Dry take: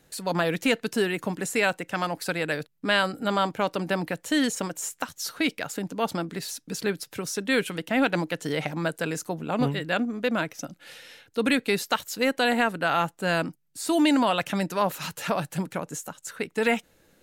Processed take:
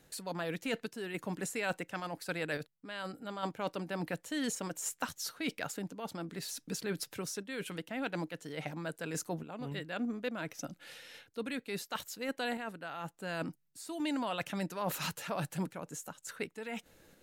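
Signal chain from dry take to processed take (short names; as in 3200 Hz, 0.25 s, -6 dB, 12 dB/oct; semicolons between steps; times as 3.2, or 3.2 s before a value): reverse; compressor 6:1, threshold -32 dBFS, peak gain reduction 14.5 dB; reverse; random-step tremolo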